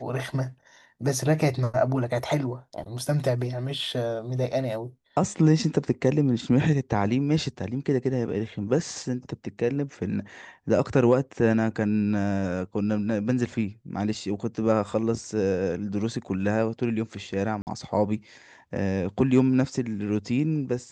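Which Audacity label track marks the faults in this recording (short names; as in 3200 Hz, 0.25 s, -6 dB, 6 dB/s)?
17.620000	17.670000	gap 49 ms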